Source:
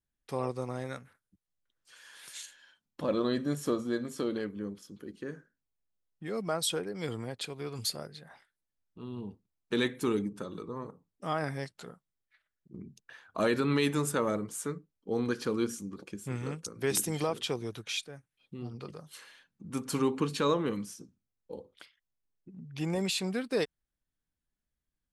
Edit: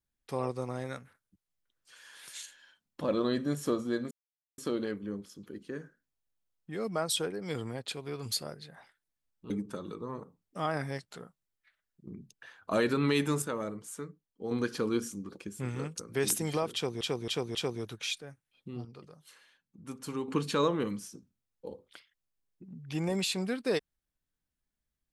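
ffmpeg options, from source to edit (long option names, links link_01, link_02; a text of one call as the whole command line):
ffmpeg -i in.wav -filter_complex "[0:a]asplit=10[link_01][link_02][link_03][link_04][link_05][link_06][link_07][link_08][link_09][link_10];[link_01]atrim=end=4.11,asetpts=PTS-STARTPTS,afade=type=out:start_time=4.106:duration=0.004:curve=hsin,apad=pad_dur=0.47[link_11];[link_02]atrim=start=4.11:end=9.032,asetpts=PTS-STARTPTS,afade=type=in:duration=0.004:curve=hsin[link_12];[link_03]atrim=start=10.168:end=14.092[link_13];[link_04]atrim=start=14.088:end=15.182,asetpts=PTS-STARTPTS,volume=-5.5dB[link_14];[link_05]atrim=start=15.178:end=17.682[link_15];[link_06]atrim=start=17.408:end=17.682[link_16];[link_07]atrim=start=17.408:end=17.682[link_17];[link_08]atrim=start=17.408:end=18.712[link_18];[link_09]atrim=start=18.708:end=20.142,asetpts=PTS-STARTPTS,volume=-7.5dB[link_19];[link_10]atrim=start=20.138[link_20];[link_11][link_12]concat=n=2:v=0:a=1[link_21];[link_21][link_13]acrossfade=duration=0.004:curve1=hsin:curve2=hsin[link_22];[link_22][link_14]acrossfade=duration=0.004:curve1=hsin:curve2=hsin[link_23];[link_23][link_15]acrossfade=duration=0.004:curve1=hsin:curve2=hsin[link_24];[link_24][link_16]acrossfade=duration=0.004:curve1=hsin:curve2=hsin[link_25];[link_25][link_17]acrossfade=duration=0.004:curve1=hsin:curve2=hsin[link_26];[link_26][link_18]acrossfade=duration=0.004:curve1=hsin:curve2=hsin[link_27];[link_27][link_19]acrossfade=duration=0.004:curve1=hsin:curve2=hsin[link_28];[link_28][link_20]acrossfade=duration=0.004:curve1=hsin:curve2=hsin" out.wav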